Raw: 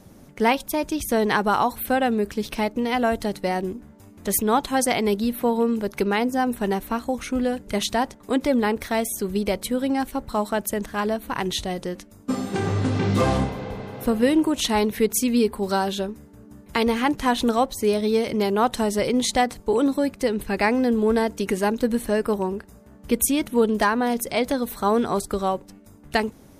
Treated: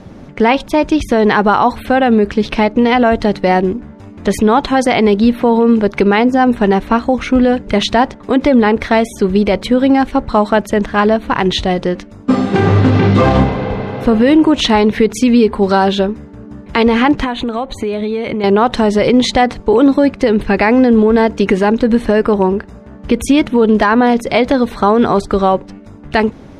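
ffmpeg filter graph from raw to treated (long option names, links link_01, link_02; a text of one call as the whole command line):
ffmpeg -i in.wav -filter_complex "[0:a]asettb=1/sr,asplit=3[link_01][link_02][link_03];[link_01]atrim=end=17.244[link_04];[link_02]atrim=start=17.24:end=18.44,asetpts=PTS-STARTPTS,afade=type=in:duration=0.004:curve=qsin,afade=type=out:start_time=1.196:duration=0.004:curve=qsin,equalizer=frequency=2300:width_type=o:width=0.21:gain=4.5,acompressor=threshold=-28dB:ratio=8:attack=3.2:release=140:knee=1:detection=peak,asuperstop=centerf=5300:order=4:qfactor=3.2[link_05];[link_03]atrim=start=18.436[link_06];[link_04][link_05]acrossfade=duration=0.004:curve1=hsin:curve2=qsin[link_07];[link_07][link_06]acrossfade=duration=0.004:curve1=qsin:curve2=hsin,lowpass=3500,alimiter=level_in=14.5dB:limit=-1dB:release=50:level=0:latency=1,volume=-1dB" out.wav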